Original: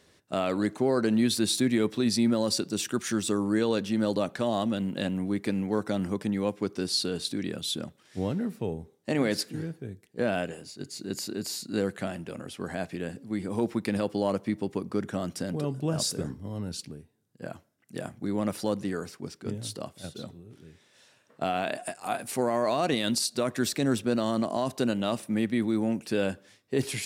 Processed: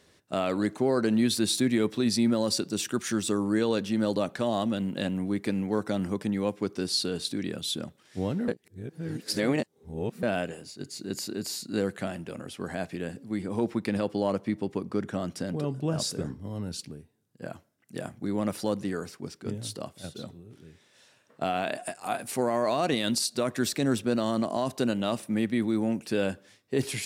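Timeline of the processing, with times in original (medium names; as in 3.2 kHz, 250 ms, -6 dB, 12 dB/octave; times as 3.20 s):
8.48–10.23 s: reverse
13.42–16.41 s: treble shelf 7.8 kHz -6.5 dB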